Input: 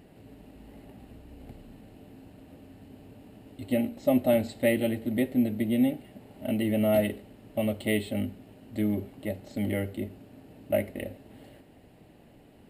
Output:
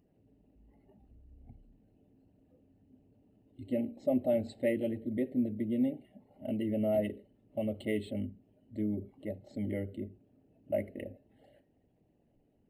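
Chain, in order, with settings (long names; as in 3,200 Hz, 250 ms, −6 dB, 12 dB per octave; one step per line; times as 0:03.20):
spectral envelope exaggerated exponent 1.5
noise reduction from a noise print of the clip's start 10 dB
level −6 dB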